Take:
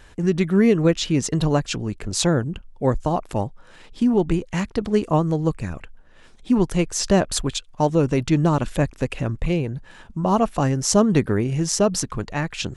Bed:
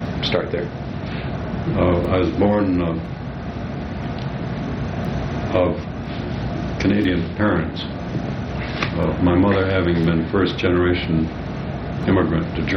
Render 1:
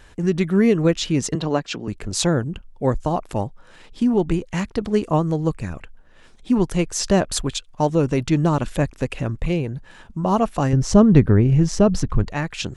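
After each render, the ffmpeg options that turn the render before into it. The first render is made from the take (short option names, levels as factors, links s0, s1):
-filter_complex "[0:a]asettb=1/sr,asplit=3[s0][s1][s2];[s0]atrim=end=1.354[s3];[s1]atrim=start=1.35:end=1.88,asetpts=PTS-STARTPTS,afade=t=in:d=0.004:c=qsin,afade=t=out:st=0.526:d=0.004:c=qsin,acrossover=split=170 6200:gain=0.126 1 0.112[s4][s5][s6];[s4][s5][s6]amix=inputs=3:normalize=0[s7];[s2]atrim=start=1.876[s8];[s3][s7]acrossfade=d=0.004:c1=hsin:c2=qsin[s9];[s9][s8]acrossfade=d=0.004:c1=qsin:c2=hsin,asettb=1/sr,asplit=3[s10][s11][s12];[s10]atrim=end=10.734[s13];[s11]atrim=start=10.73:end=12.28,asetpts=PTS-STARTPTS,afade=t=in:d=0.004:c=qsin,afade=t=out:st=1.546:d=0.004:c=qsin,aemphasis=mode=reproduction:type=bsi[s14];[s12]atrim=start=12.276[s15];[s13][s14]acrossfade=d=0.004:c1=hsin:c2=qsin[s16];[s16][s15]acrossfade=d=0.004:c1=qsin:c2=hsin"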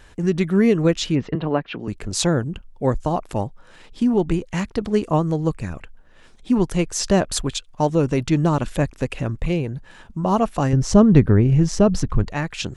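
-filter_complex "[0:a]asplit=3[s0][s1][s2];[s0]afade=t=out:st=1.14:d=0.02[s3];[s1]lowpass=f=2900:w=0.5412,lowpass=f=2900:w=1.3066,afade=t=in:st=1.14:d=0.02,afade=t=out:st=1.77:d=0.02[s4];[s2]afade=t=in:st=1.77:d=0.02[s5];[s3][s4][s5]amix=inputs=3:normalize=0"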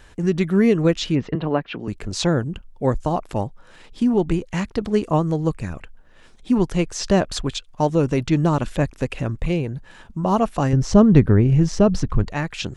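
-filter_complex "[0:a]acrossover=split=6400[s0][s1];[s1]acompressor=threshold=0.00631:ratio=4:attack=1:release=60[s2];[s0][s2]amix=inputs=2:normalize=0"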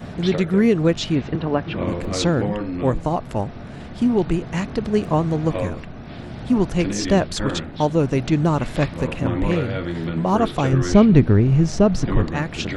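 -filter_complex "[1:a]volume=0.376[s0];[0:a][s0]amix=inputs=2:normalize=0"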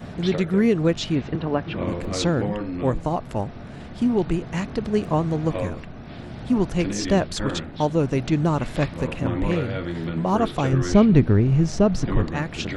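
-af "volume=0.75"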